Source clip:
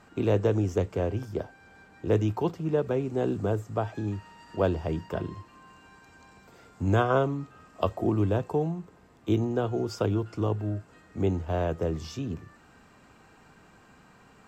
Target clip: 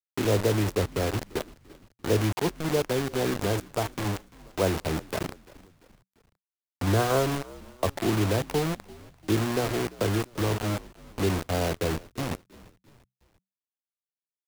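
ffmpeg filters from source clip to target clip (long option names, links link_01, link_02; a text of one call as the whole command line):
ffmpeg -i in.wav -filter_complex "[0:a]acrossover=split=120|1000[link_01][link_02][link_03];[link_03]asoftclip=type=tanh:threshold=-30dB[link_04];[link_01][link_02][link_04]amix=inputs=3:normalize=0,acrusher=bits=4:mix=0:aa=0.000001,asplit=4[link_05][link_06][link_07][link_08];[link_06]adelay=343,afreqshift=-64,volume=-21dB[link_09];[link_07]adelay=686,afreqshift=-128,volume=-27.4dB[link_10];[link_08]adelay=1029,afreqshift=-192,volume=-33.8dB[link_11];[link_05][link_09][link_10][link_11]amix=inputs=4:normalize=0" out.wav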